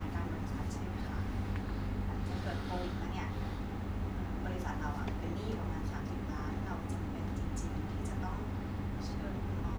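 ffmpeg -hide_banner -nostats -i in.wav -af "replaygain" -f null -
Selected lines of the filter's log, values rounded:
track_gain = +24.0 dB
track_peak = 0.043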